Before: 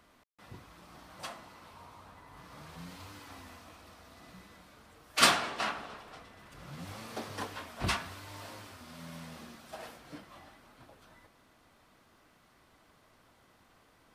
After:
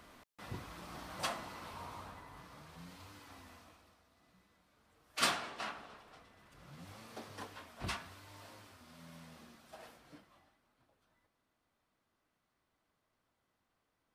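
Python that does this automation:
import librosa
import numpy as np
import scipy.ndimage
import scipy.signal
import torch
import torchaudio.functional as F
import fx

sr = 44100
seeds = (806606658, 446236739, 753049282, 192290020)

y = fx.gain(x, sr, db=fx.line((1.99, 5.0), (2.64, -6.0), (3.61, -6.0), (4.08, -16.0), (4.62, -16.0), (5.27, -8.5), (10.07, -8.5), (10.59, -18.0)))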